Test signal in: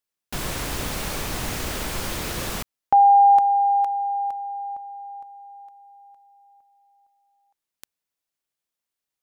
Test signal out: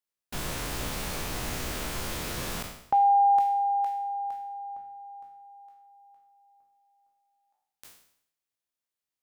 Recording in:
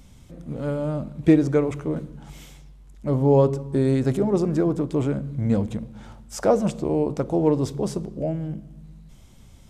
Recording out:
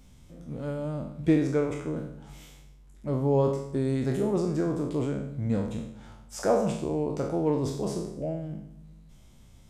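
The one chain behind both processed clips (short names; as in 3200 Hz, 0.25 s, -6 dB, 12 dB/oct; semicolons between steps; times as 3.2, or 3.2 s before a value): spectral trails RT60 0.68 s; two-slope reverb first 0.45 s, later 2 s, from -18 dB, DRR 16.5 dB; gain -7 dB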